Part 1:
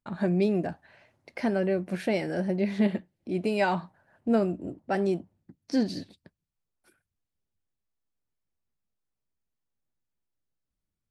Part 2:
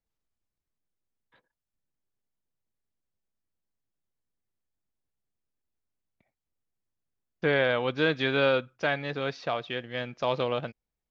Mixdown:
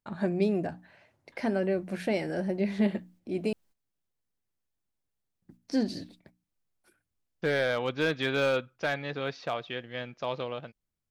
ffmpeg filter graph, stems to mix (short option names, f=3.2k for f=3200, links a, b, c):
-filter_complex "[0:a]bandreject=f=60:t=h:w=6,bandreject=f=120:t=h:w=6,bandreject=f=180:t=h:w=6,bandreject=f=240:t=h:w=6,bandreject=f=300:t=h:w=6,volume=-1.5dB,asplit=3[a][b][c];[a]atrim=end=3.53,asetpts=PTS-STARTPTS,afade=t=out:st=3.526:d=0.004:c=hsin[d];[b]atrim=start=3.53:end=5.42,asetpts=PTS-STARTPTS,volume=0[e];[c]atrim=start=5.42,asetpts=PTS-STARTPTS,afade=t=in:d=0.004:c=hsin[f];[d][e][f]concat=n=3:v=0:a=1,asplit=2[g][h];[1:a]dynaudnorm=f=590:g=5:m=12dB,asoftclip=type=hard:threshold=-8.5dB,volume=0.5dB[i];[h]apad=whole_len=489576[j];[i][j]sidechaingate=range=-12dB:threshold=-55dB:ratio=16:detection=peak[k];[g][k]amix=inputs=2:normalize=0"